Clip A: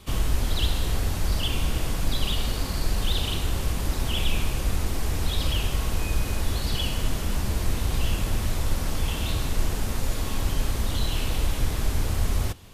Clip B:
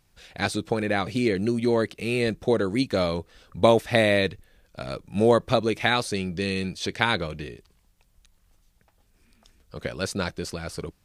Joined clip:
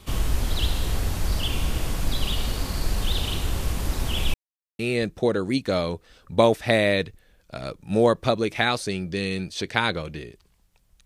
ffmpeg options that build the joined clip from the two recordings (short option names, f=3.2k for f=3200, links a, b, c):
-filter_complex "[0:a]apad=whole_dur=11.05,atrim=end=11.05,asplit=2[a][b];[a]atrim=end=4.34,asetpts=PTS-STARTPTS,afade=t=out:st=4.336:d=0.004:c=hsin[c];[b]atrim=start=4.34:end=4.79,asetpts=PTS-STARTPTS,volume=0[d];[1:a]atrim=start=2.04:end=8.3,asetpts=PTS-STARTPTS,afade=t=in:d=0.004:c=hsin[e];[c][d][e]concat=n=3:v=0:a=1"